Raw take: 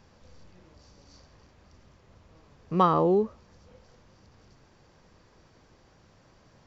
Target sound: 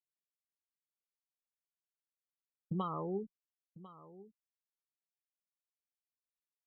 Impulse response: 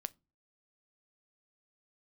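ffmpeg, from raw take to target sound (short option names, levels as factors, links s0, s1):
-af "crystalizer=i=8:c=0,afftfilt=real='re*gte(hypot(re,im),0.112)':imag='im*gte(hypot(re,im),0.112)':win_size=1024:overlap=0.75,aemphasis=mode=reproduction:type=bsi,acompressor=threshold=0.0178:ratio=8,lowpass=f=2900:t=q:w=1.8,flanger=delay=4.8:depth=2.2:regen=73:speed=0.67:shape=sinusoidal,anlmdn=0.0000398,aecho=1:1:1048:0.133,volume=1.41"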